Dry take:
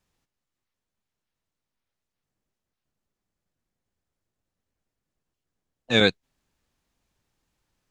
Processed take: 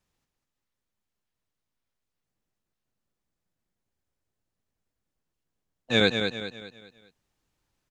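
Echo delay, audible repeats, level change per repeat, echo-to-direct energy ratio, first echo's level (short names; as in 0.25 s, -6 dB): 0.202 s, 4, -7.5 dB, -5.5 dB, -6.5 dB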